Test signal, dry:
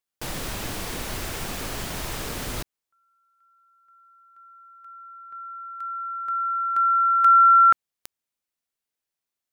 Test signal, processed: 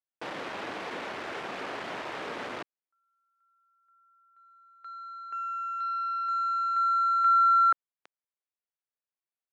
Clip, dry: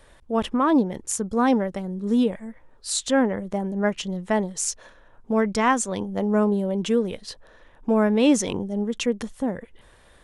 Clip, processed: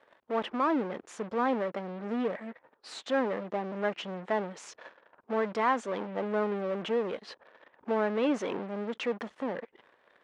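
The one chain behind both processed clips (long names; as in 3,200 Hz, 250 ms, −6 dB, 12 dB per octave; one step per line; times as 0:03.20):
in parallel at −11 dB: fuzz pedal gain 38 dB, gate −47 dBFS
on the sum: band-pass filter 350–2,300 Hz
level −8.5 dB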